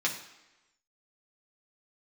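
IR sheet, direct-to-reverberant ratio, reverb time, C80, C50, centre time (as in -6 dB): -2.5 dB, 1.0 s, 11.5 dB, 8.5 dB, 21 ms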